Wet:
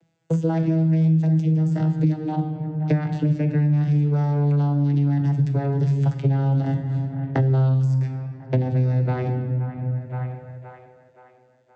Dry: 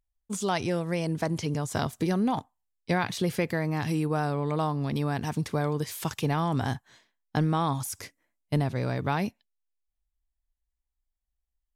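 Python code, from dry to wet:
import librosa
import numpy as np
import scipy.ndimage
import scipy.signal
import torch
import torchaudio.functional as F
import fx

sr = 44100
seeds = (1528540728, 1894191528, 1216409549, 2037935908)

p1 = fx.vocoder_glide(x, sr, note=52, semitones=-6)
p2 = fx.peak_eq(p1, sr, hz=1100.0, db=-14.0, octaves=0.22)
p3 = p2 + fx.echo_wet_bandpass(p2, sr, ms=522, feedback_pct=44, hz=1100.0, wet_db=-22.5, dry=0)
p4 = fx.room_shoebox(p3, sr, seeds[0], volume_m3=540.0, walls='mixed', distance_m=0.72)
p5 = fx.band_squash(p4, sr, depth_pct=100)
y = p5 * librosa.db_to_amplitude(6.0)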